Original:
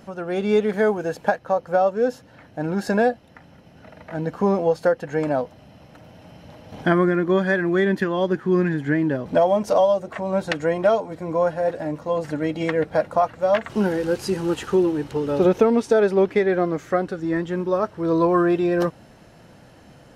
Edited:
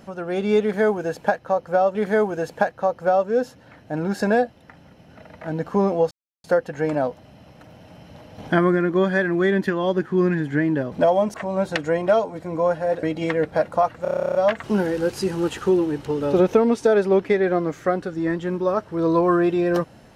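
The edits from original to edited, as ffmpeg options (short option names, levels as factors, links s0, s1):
-filter_complex "[0:a]asplit=16[s0][s1][s2][s3][s4][s5][s6][s7][s8][s9][s10][s11][s12][s13][s14][s15];[s0]atrim=end=1.952[s16];[s1]atrim=start=0.618:end=4.78,asetpts=PTS-STARTPTS,afade=t=out:st=4.158:d=0.004:c=hsin,apad=pad_dur=0.33[s17];[s2]atrim=start=4.78:end=9.682,asetpts=PTS-STARTPTS,afade=t=in:d=0.004:c=hsin[s18];[s3]atrim=start=10.098:end=11.792[s19];[s4]atrim=start=12.418:end=13.442[s20];[s5]atrim=start=13.408:end=13.442[s21];[s6]atrim=start=13.408:end=13.442[s22];[s7]atrim=start=13.408:end=13.442[s23];[s8]atrim=start=13.408:end=13.442[s24];[s9]atrim=start=13.408:end=13.442[s25];[s10]atrim=start=13.408:end=13.442[s26];[s11]atrim=start=13.408:end=13.442[s27];[s12]atrim=start=13.408:end=13.442[s28];[s13]atrim=start=13.408:end=13.442[s29];[s14]atrim=start=13.408:end=13.442[s30];[s15]atrim=start=13.408[s31];[s17][s18]concat=n=2:v=0:a=1[s32];[s16][s32]acrossfade=d=0.004:c1=hsin:c2=hsin[s33];[s33][s19]acrossfade=d=0.004:c1=hsin:c2=hsin[s34];[s34][s20]acrossfade=d=0.004:c1=hsin:c2=hsin[s35];[s35][s21]acrossfade=d=0.004:c1=hsin:c2=hsin[s36];[s36][s22]acrossfade=d=0.004:c1=hsin:c2=hsin[s37];[s37][s23]acrossfade=d=0.004:c1=hsin:c2=hsin[s38];[s38][s24]acrossfade=d=0.004:c1=hsin:c2=hsin[s39];[s39][s25]acrossfade=d=0.004:c1=hsin:c2=hsin[s40];[s40][s26]acrossfade=d=0.004:c1=hsin:c2=hsin[s41];[s41][s27]acrossfade=d=0.004:c1=hsin:c2=hsin[s42];[s42][s28]acrossfade=d=0.004:c1=hsin:c2=hsin[s43];[s43][s29]acrossfade=d=0.004:c1=hsin:c2=hsin[s44];[s44][s30]acrossfade=d=0.004:c1=hsin:c2=hsin[s45];[s45][s31]acrossfade=d=0.004:c1=hsin:c2=hsin"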